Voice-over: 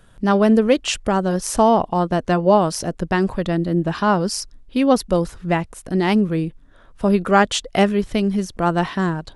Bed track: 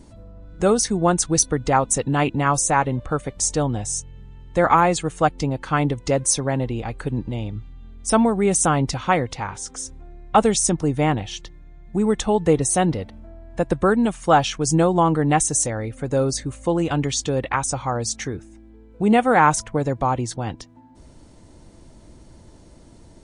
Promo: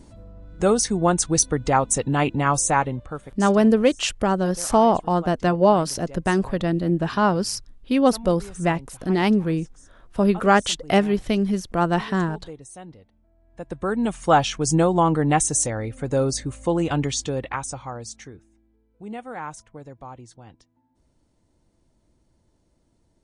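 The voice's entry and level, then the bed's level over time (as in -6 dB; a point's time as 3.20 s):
3.15 s, -2.0 dB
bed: 2.77 s -1 dB
3.71 s -22 dB
13.28 s -22 dB
14.14 s -1 dB
17.03 s -1 dB
18.83 s -18.5 dB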